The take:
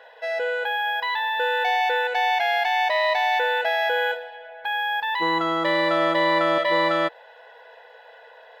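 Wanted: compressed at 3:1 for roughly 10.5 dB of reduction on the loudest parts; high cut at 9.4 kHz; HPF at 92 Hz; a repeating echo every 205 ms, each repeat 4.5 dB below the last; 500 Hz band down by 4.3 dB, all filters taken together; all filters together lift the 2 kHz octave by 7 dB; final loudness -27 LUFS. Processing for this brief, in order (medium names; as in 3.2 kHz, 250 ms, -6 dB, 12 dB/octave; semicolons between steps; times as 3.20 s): high-pass 92 Hz; low-pass 9.4 kHz; peaking EQ 500 Hz -6 dB; peaking EQ 2 kHz +8.5 dB; compression 3:1, threshold -30 dBFS; feedback delay 205 ms, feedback 60%, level -4.5 dB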